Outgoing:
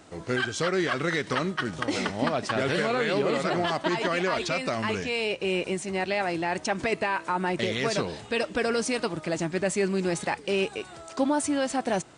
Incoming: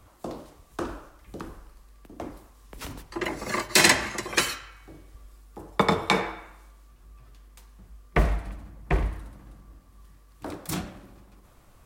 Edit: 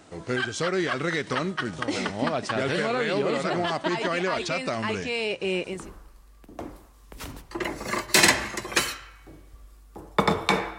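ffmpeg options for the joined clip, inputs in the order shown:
ffmpeg -i cue0.wav -i cue1.wav -filter_complex "[0:a]apad=whole_dur=10.78,atrim=end=10.78,atrim=end=5.95,asetpts=PTS-STARTPTS[link_01];[1:a]atrim=start=1.18:end=6.39,asetpts=PTS-STARTPTS[link_02];[link_01][link_02]acrossfade=duration=0.38:curve1=tri:curve2=tri" out.wav

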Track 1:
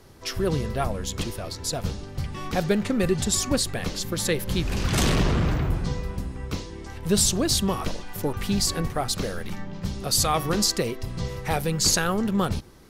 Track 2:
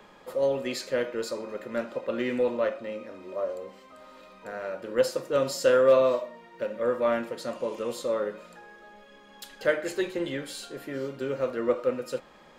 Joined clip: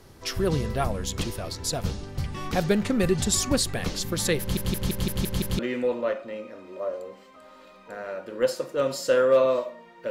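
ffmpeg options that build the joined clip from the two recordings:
ffmpeg -i cue0.wav -i cue1.wav -filter_complex "[0:a]apad=whole_dur=10.1,atrim=end=10.1,asplit=7[link_01][link_02][link_03][link_04][link_05][link_06][link_07];[link_01]atrim=end=4.572[link_08];[link_02]atrim=start=4.398:end=4.572[link_09];[link_03]atrim=start=4.398:end=4.572[link_10];[link_04]atrim=start=4.398:end=4.572[link_11];[link_05]atrim=start=4.398:end=4.572[link_12];[link_06]atrim=start=4.398:end=4.572[link_13];[link_07]atrim=start=4.398:end=4.572[link_14];[1:a]atrim=start=2.148:end=6.66[link_15];[link_08][link_09]acrossfade=duration=0.004:curve1=hsin:curve2=hsin[link_16];[link_16][link_10]acrossfade=duration=0.004:curve1=hsin:curve2=hsin[link_17];[link_17][link_11]acrossfade=duration=0.004:curve1=hsin:curve2=hsin[link_18];[link_18][link_12]acrossfade=duration=0.004:curve1=hsin:curve2=hsin[link_19];[link_19][link_13]acrossfade=duration=0.004:curve1=hsin:curve2=hsin[link_20];[link_20][link_14]acrossfade=duration=0.004:curve1=hsin:curve2=hsin[link_21];[link_21][link_15]acrossfade=duration=0.004:curve1=hsin:curve2=hsin" out.wav

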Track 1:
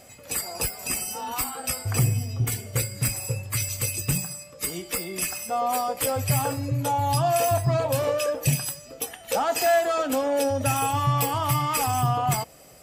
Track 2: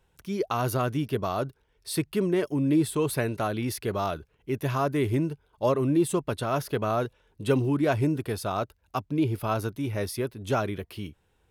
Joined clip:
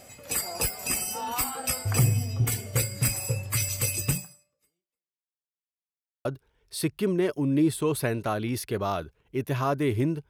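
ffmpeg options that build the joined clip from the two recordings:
ffmpeg -i cue0.wav -i cue1.wav -filter_complex "[0:a]apad=whole_dur=10.29,atrim=end=10.29,asplit=2[link_01][link_02];[link_01]atrim=end=5.41,asetpts=PTS-STARTPTS,afade=type=out:start_time=4.09:duration=1.32:curve=exp[link_03];[link_02]atrim=start=5.41:end=6.25,asetpts=PTS-STARTPTS,volume=0[link_04];[1:a]atrim=start=1.39:end=5.43,asetpts=PTS-STARTPTS,afade=type=in:duration=0.004:curve=hsin[link_05];[link_03][link_04][link_05]concat=n=3:v=0:a=1" out.wav

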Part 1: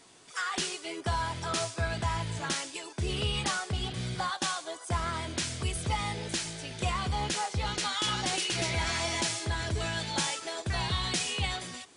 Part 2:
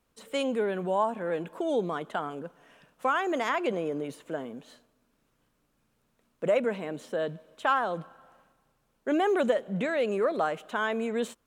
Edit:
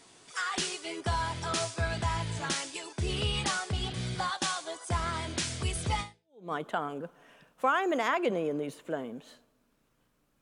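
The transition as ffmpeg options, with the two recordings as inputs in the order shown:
ffmpeg -i cue0.wav -i cue1.wav -filter_complex "[0:a]apad=whole_dur=10.41,atrim=end=10.41,atrim=end=6.52,asetpts=PTS-STARTPTS[link_01];[1:a]atrim=start=1.41:end=5.82,asetpts=PTS-STARTPTS[link_02];[link_01][link_02]acrossfade=duration=0.52:curve1=exp:curve2=exp" out.wav

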